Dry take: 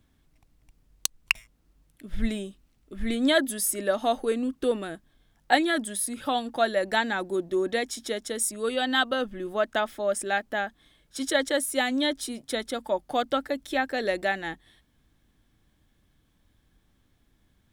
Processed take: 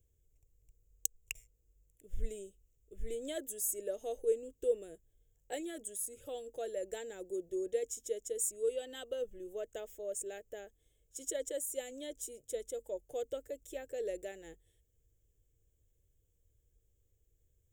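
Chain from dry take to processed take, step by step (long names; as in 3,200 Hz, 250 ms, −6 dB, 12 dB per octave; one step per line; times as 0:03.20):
drawn EQ curve 100 Hz 0 dB, 240 Hz −22 dB, 460 Hz +3 dB, 790 Hz −21 dB, 1,200 Hz −26 dB, 2,900 Hz −12 dB, 4,400 Hz −23 dB, 7,100 Hz +6 dB, 10,000 Hz −6 dB, 15,000 Hz +5 dB
level −6 dB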